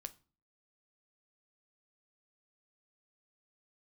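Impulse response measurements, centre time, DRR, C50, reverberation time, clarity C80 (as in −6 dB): 3 ms, 10.5 dB, 19.5 dB, non-exponential decay, 25.5 dB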